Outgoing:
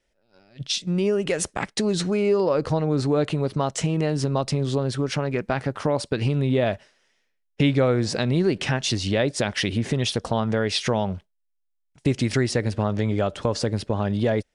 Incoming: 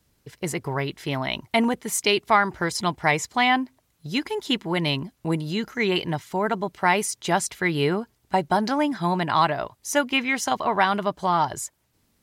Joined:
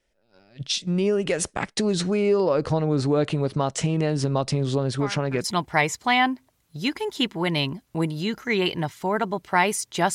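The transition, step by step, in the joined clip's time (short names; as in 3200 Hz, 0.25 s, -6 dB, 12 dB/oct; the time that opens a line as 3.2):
outgoing
4.99 add incoming from 2.29 s 0.45 s -16 dB
5.44 switch to incoming from 2.74 s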